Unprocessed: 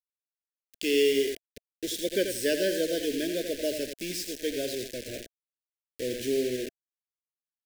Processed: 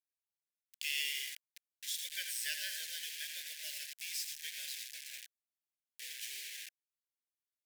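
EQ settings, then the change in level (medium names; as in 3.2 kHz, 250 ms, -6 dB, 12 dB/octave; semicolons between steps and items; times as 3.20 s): ladder high-pass 1.5 kHz, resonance 30%; peaking EQ 14 kHz +5.5 dB 1.9 oct; -1.5 dB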